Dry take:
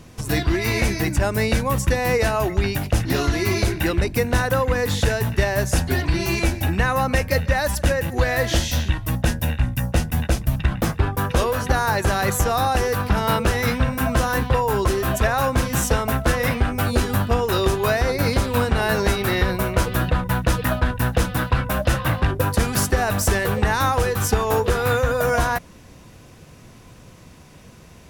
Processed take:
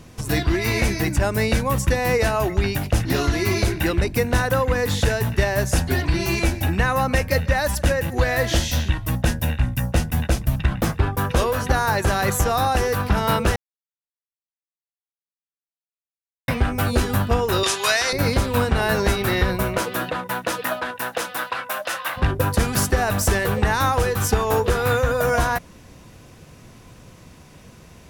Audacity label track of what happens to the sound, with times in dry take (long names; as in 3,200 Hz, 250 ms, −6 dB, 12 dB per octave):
13.560000	16.480000	silence
17.630000	18.130000	meter weighting curve ITU-R 468
19.760000	22.160000	high-pass filter 230 Hz → 890 Hz